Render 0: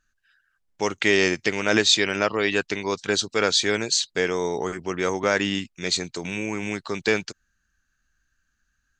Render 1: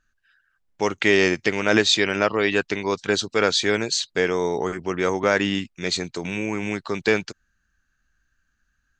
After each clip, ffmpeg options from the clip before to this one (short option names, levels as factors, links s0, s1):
-af "highshelf=f=4400:g=-7.5,volume=1.33"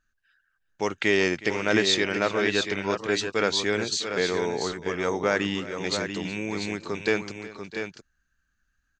-af "aecho=1:1:366|658|689:0.119|0.141|0.422,volume=0.596"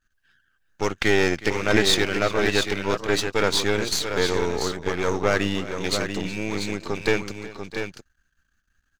-af "aeval=exprs='if(lt(val(0),0),0.251*val(0),val(0))':c=same,volume=2.11"